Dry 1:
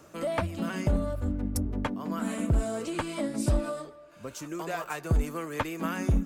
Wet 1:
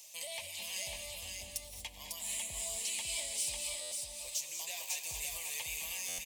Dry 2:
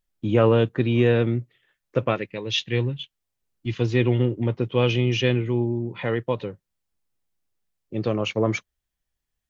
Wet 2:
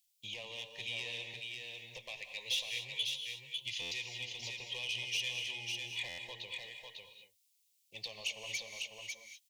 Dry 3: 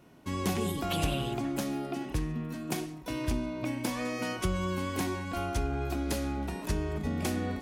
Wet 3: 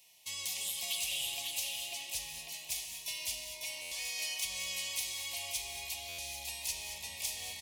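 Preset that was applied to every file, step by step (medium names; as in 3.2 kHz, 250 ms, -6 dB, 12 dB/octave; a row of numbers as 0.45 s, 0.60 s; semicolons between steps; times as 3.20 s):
tracing distortion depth 0.024 ms; tilt EQ +3.5 dB/octave; compression 6:1, threshold -31 dBFS; hard clipper -26.5 dBFS; overdrive pedal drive 4 dB, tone 6.9 kHz, clips at -26.5 dBFS; Butterworth band-stop 1.4 kHz, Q 1; amplifier tone stack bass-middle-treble 10-0-10; on a send: delay 549 ms -4 dB; on the sum: gated-style reverb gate 260 ms rising, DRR 6.5 dB; buffer glitch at 3.81/6.08 s, samples 512, times 8; trim +2 dB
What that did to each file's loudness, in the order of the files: -6.5 LU, -15.5 LU, -3.5 LU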